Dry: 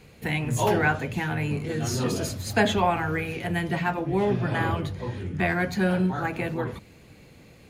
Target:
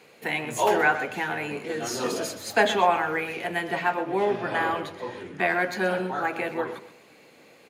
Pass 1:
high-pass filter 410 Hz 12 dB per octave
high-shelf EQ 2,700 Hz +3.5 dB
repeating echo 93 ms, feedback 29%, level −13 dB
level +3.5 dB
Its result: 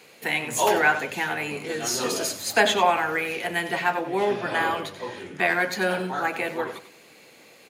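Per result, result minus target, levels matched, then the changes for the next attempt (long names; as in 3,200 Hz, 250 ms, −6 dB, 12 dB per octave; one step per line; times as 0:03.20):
echo 32 ms early; 4,000 Hz band +3.5 dB
change: repeating echo 125 ms, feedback 29%, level −13 dB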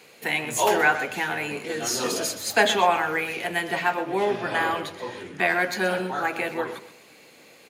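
4,000 Hz band +3.5 dB
change: high-shelf EQ 2,700 Hz −4.5 dB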